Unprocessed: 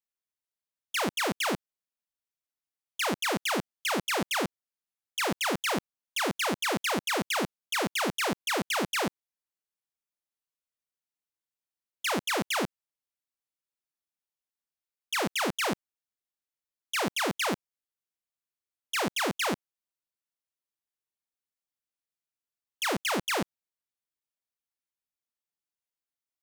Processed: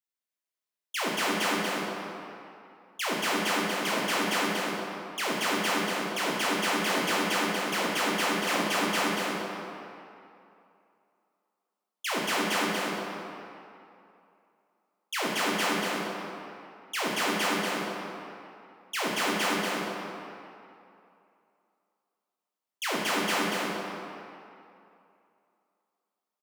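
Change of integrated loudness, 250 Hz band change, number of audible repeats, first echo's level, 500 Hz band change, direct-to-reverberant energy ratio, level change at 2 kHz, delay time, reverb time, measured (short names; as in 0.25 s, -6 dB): +1.0 dB, +2.5 dB, 1, -4.0 dB, +2.0 dB, -5.5 dB, +3.0 dB, 0.24 s, 2.7 s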